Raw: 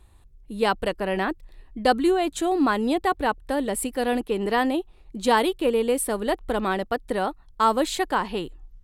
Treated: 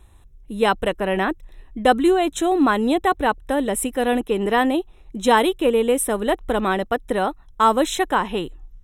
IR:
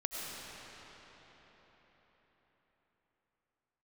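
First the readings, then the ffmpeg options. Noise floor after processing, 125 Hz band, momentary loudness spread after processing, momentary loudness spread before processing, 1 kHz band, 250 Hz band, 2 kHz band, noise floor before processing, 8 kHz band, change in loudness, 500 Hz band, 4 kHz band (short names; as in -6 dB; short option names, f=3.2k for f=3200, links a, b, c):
-49 dBFS, n/a, 8 LU, 8 LU, +4.0 dB, +4.0 dB, +4.0 dB, -52 dBFS, +4.0 dB, +4.0 dB, +4.0 dB, +3.0 dB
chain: -af "asuperstop=centerf=4600:order=20:qfactor=4.4,volume=4dB"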